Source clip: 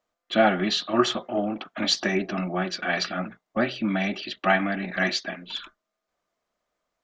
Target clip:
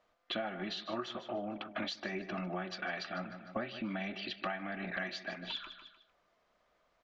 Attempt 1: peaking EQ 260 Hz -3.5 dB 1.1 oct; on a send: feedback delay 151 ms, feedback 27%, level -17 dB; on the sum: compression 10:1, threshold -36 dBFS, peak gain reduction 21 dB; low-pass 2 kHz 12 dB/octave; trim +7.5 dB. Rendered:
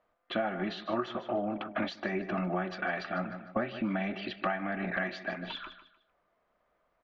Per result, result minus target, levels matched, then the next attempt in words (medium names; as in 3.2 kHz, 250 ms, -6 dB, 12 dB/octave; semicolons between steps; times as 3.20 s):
4 kHz band -7.5 dB; compression: peak gain reduction -6.5 dB
peaking EQ 260 Hz -3.5 dB 1.1 oct; on a send: feedback delay 151 ms, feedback 27%, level -17 dB; on the sum: compression 10:1, threshold -36 dBFS, peak gain reduction 21 dB; low-pass 4.1 kHz 12 dB/octave; trim +7.5 dB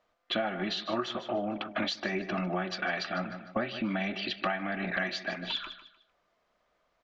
compression: peak gain reduction -6.5 dB
peaking EQ 260 Hz -3.5 dB 1.1 oct; on a send: feedback delay 151 ms, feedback 27%, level -17 dB; on the sum: compression 10:1, threshold -43.5 dBFS, peak gain reduction 27.5 dB; low-pass 4.1 kHz 12 dB/octave; trim +7.5 dB